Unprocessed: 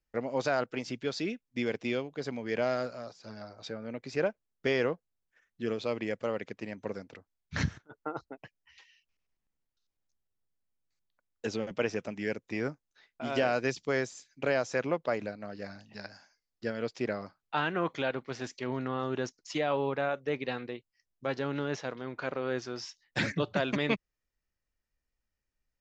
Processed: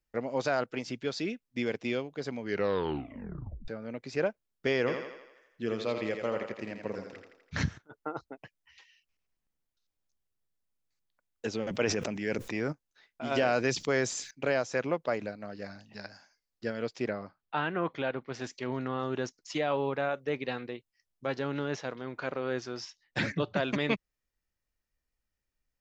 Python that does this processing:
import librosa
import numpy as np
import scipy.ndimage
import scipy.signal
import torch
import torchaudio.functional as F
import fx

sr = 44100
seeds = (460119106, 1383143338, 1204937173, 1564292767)

y = fx.echo_thinned(x, sr, ms=83, feedback_pct=57, hz=240.0, wet_db=-5.5, at=(4.86, 7.58), fade=0.02)
y = fx.sustainer(y, sr, db_per_s=30.0, at=(11.65, 12.71), fade=0.02)
y = fx.env_flatten(y, sr, amount_pct=50, at=(13.31, 14.31))
y = fx.air_absorb(y, sr, metres=180.0, at=(17.1, 18.34))
y = fx.air_absorb(y, sr, metres=57.0, at=(22.85, 23.63))
y = fx.edit(y, sr, fx.tape_stop(start_s=2.43, length_s=1.25), tone=tone)